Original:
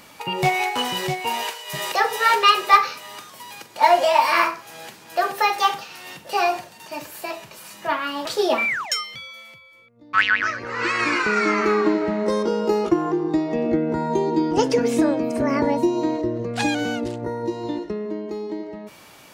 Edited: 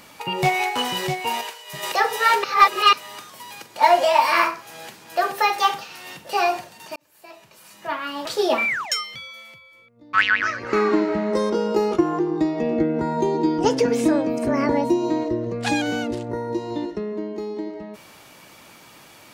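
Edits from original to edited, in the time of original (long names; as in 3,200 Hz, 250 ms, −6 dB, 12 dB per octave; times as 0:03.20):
0:01.41–0:01.83: clip gain −5 dB
0:02.44–0:02.93: reverse
0:06.96–0:08.48: fade in
0:10.73–0:11.66: remove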